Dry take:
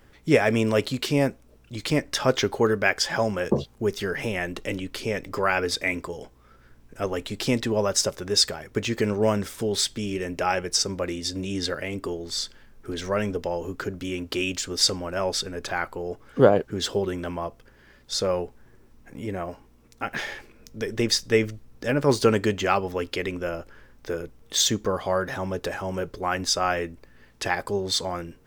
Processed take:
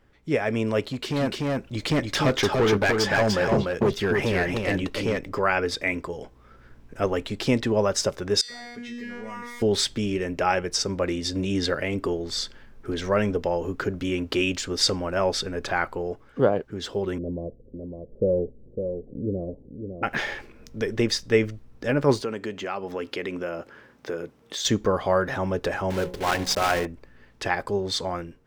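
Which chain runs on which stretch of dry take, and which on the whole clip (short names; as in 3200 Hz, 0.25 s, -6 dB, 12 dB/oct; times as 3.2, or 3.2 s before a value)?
0.81–5.19 hard clip -22 dBFS + echo 0.295 s -3.5 dB
8.41–9.62 bell 2000 Hz +13.5 dB 0.27 oct + resonator 240 Hz, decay 0.67 s, mix 100% + fast leveller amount 70%
17.18–20.03 elliptic low-pass 530 Hz, stop band 80 dB + echo 0.555 s -7 dB
22.21–24.65 HPF 160 Hz + compressor 2:1, threshold -34 dBFS
25.9–26.87 block floating point 3-bit + notch 1200 Hz + de-hum 60.59 Hz, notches 18
whole clip: high shelf 6000 Hz -11 dB; AGC gain up to 10.5 dB; gain -6 dB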